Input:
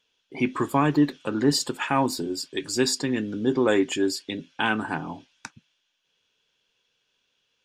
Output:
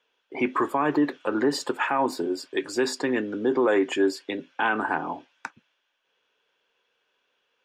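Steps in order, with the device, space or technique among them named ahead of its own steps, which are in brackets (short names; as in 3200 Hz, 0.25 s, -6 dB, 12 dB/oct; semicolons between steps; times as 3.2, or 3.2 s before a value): DJ mixer with the lows and highs turned down (three-band isolator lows -18 dB, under 320 Hz, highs -15 dB, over 2200 Hz; limiter -20.5 dBFS, peak gain reduction 9.5 dB); gain +7 dB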